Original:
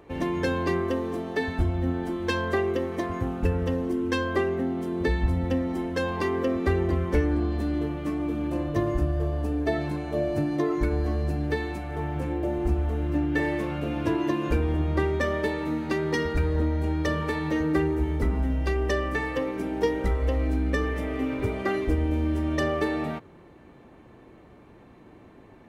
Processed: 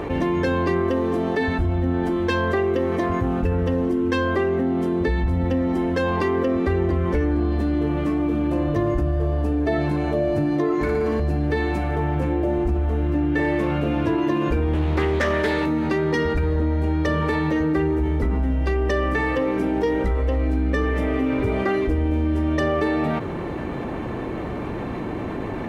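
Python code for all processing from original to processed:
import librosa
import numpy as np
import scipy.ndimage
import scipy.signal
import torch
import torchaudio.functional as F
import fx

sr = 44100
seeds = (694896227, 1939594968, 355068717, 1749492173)

y = fx.chain(x, sr, fx.highpass(hz=54.0, slope=12),
    fx.low_shelf(hz=140.0, db=-9.5),
    fx.room_flutter(wall_m=10.1, rt60_s=1.2), at=(10.74, 11.2))
y = fx.chain(y, sr, fx.high_shelf(hz=2500.0, db=9.5),
    fx.doppler_dist(depth_ms=0.32), at=(14.73, 15.66))
y = fx.high_shelf(y, sr, hz=4800.0, db=-8.5)
y = fx.env_flatten(y, sr, amount_pct=70)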